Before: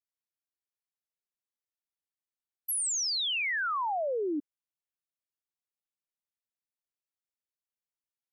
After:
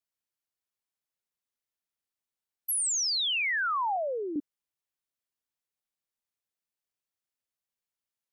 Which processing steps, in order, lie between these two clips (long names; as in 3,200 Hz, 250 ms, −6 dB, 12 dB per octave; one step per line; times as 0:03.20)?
0:03.96–0:04.36: meter weighting curve A
level +2 dB